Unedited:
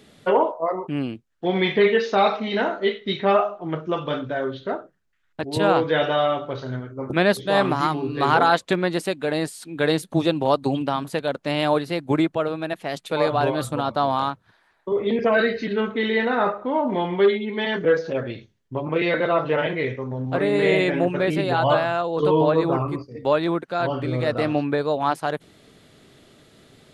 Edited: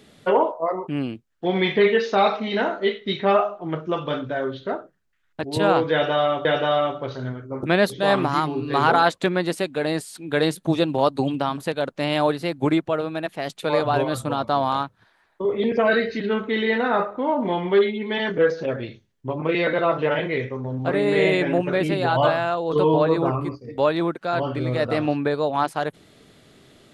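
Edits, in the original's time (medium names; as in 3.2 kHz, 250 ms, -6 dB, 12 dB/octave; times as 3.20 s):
5.92–6.45 s: loop, 2 plays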